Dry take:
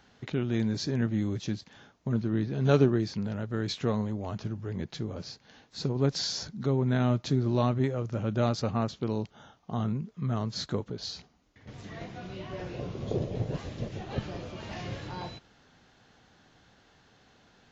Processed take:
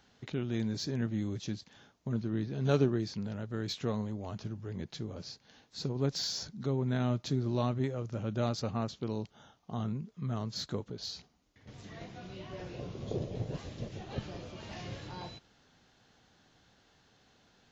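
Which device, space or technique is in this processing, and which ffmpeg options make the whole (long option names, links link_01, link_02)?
exciter from parts: -filter_complex "[0:a]asplit=2[link_01][link_02];[link_02]highpass=2500,asoftclip=type=tanh:threshold=-31dB,volume=-6dB[link_03];[link_01][link_03]amix=inputs=2:normalize=0,volume=-5dB"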